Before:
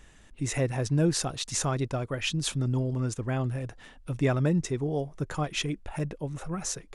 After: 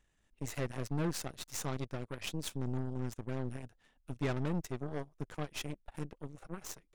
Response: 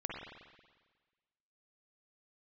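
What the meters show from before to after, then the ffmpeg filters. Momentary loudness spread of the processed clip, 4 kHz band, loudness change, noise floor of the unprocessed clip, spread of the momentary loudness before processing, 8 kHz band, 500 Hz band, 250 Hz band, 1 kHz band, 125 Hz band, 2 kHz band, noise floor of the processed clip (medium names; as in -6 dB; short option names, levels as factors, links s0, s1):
11 LU, -11.5 dB, -10.0 dB, -54 dBFS, 9 LU, -12.0 dB, -10.0 dB, -9.5 dB, -9.0 dB, -11.0 dB, -9.5 dB, -74 dBFS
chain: -af "aeval=exprs='0.237*(cos(1*acos(clip(val(0)/0.237,-1,1)))-cos(1*PI/2))+0.00299*(cos(5*acos(clip(val(0)/0.237,-1,1)))-cos(5*PI/2))+0.0299*(cos(7*acos(clip(val(0)/0.237,-1,1)))-cos(7*PI/2))+0.0188*(cos(8*acos(clip(val(0)/0.237,-1,1)))-cos(8*PI/2))':c=same,asoftclip=type=tanh:threshold=0.0891,volume=0.562"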